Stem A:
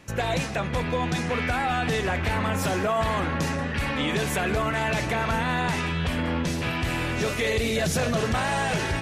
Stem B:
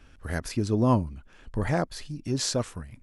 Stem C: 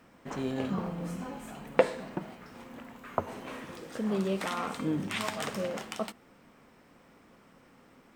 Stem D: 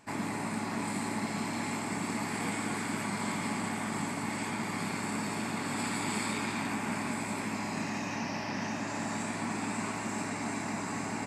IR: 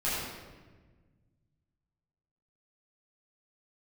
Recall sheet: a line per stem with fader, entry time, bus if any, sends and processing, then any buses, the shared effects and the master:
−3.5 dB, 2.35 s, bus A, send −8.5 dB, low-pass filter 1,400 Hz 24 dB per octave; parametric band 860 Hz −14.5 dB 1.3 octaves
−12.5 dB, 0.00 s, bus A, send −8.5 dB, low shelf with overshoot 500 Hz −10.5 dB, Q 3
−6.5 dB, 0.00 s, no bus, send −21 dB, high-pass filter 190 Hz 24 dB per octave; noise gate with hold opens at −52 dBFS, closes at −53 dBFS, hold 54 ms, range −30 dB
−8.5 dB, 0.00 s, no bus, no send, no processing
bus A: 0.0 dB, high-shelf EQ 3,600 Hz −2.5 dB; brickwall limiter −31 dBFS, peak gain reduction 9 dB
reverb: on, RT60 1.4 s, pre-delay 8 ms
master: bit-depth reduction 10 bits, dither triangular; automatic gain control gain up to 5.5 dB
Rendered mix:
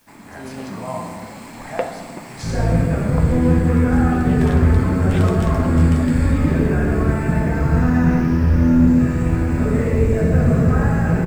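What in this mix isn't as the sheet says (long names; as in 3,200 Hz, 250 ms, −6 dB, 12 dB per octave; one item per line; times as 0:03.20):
stem A −3.5 dB → +5.0 dB
stem C: missing high-pass filter 190 Hz 24 dB per octave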